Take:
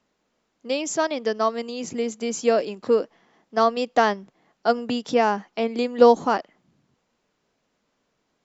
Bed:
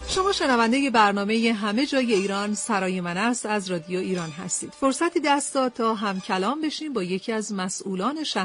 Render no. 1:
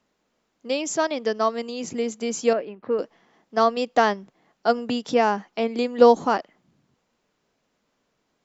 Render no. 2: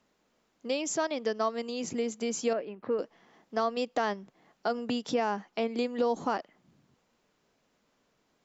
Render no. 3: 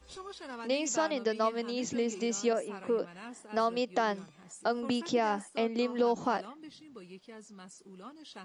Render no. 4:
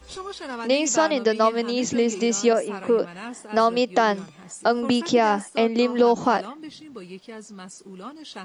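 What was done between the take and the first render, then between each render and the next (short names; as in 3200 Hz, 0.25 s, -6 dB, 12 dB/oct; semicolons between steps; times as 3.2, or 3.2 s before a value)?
2.53–2.99 ladder low-pass 2900 Hz, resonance 20%
limiter -11 dBFS, peak gain reduction 9 dB; compressor 1.5:1, threshold -37 dBFS, peak gain reduction 7.5 dB
add bed -22.5 dB
gain +10 dB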